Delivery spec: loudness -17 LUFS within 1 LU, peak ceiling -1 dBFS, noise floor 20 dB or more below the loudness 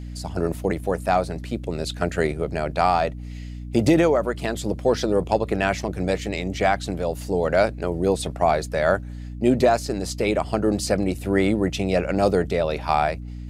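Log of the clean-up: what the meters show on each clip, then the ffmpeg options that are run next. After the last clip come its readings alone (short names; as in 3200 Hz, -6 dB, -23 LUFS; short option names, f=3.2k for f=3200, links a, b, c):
hum 60 Hz; harmonics up to 300 Hz; hum level -31 dBFS; loudness -23.0 LUFS; peak -5.5 dBFS; loudness target -17.0 LUFS
-> -af "bandreject=f=60:t=h:w=4,bandreject=f=120:t=h:w=4,bandreject=f=180:t=h:w=4,bandreject=f=240:t=h:w=4,bandreject=f=300:t=h:w=4"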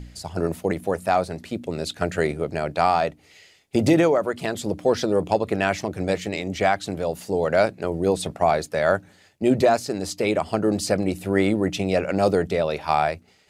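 hum none; loudness -23.0 LUFS; peak -6.0 dBFS; loudness target -17.0 LUFS
-> -af "volume=6dB,alimiter=limit=-1dB:level=0:latency=1"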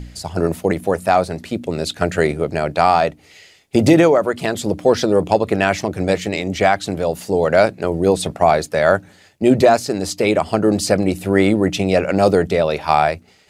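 loudness -17.5 LUFS; peak -1.0 dBFS; noise floor -50 dBFS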